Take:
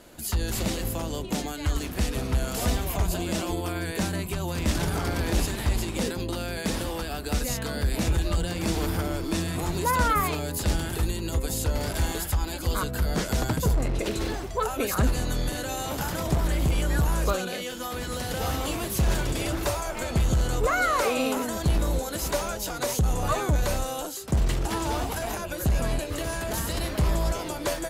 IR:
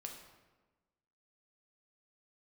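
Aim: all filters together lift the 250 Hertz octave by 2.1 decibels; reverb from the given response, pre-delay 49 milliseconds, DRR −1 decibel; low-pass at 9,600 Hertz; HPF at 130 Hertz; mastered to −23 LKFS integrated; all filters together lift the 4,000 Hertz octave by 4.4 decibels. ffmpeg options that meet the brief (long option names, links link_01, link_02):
-filter_complex "[0:a]highpass=130,lowpass=9600,equalizer=frequency=250:width_type=o:gain=3.5,equalizer=frequency=4000:width_type=o:gain=5.5,asplit=2[link_01][link_02];[1:a]atrim=start_sample=2205,adelay=49[link_03];[link_02][link_03]afir=irnorm=-1:irlink=0,volume=4.5dB[link_04];[link_01][link_04]amix=inputs=2:normalize=0,volume=1dB"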